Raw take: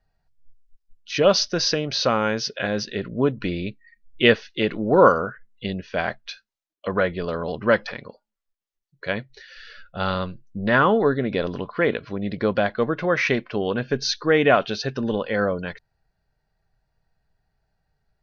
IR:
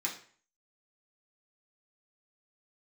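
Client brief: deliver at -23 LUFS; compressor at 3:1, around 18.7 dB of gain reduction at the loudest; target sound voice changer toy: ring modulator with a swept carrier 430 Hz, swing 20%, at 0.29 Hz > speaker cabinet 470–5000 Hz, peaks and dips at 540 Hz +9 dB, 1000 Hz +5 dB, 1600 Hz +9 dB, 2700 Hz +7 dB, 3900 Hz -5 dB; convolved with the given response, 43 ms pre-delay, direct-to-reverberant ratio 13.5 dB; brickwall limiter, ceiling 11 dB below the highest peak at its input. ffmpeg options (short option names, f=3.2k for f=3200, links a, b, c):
-filter_complex "[0:a]acompressor=threshold=-37dB:ratio=3,alimiter=level_in=5.5dB:limit=-24dB:level=0:latency=1,volume=-5.5dB,asplit=2[a][b];[1:a]atrim=start_sample=2205,adelay=43[c];[b][c]afir=irnorm=-1:irlink=0,volume=-17dB[d];[a][d]amix=inputs=2:normalize=0,aeval=exprs='val(0)*sin(2*PI*430*n/s+430*0.2/0.29*sin(2*PI*0.29*n/s))':c=same,highpass=470,equalizer=f=540:t=q:w=4:g=9,equalizer=f=1k:t=q:w=4:g=5,equalizer=f=1.6k:t=q:w=4:g=9,equalizer=f=2.7k:t=q:w=4:g=7,equalizer=f=3.9k:t=q:w=4:g=-5,lowpass=f=5k:w=0.5412,lowpass=f=5k:w=1.3066,volume=18dB"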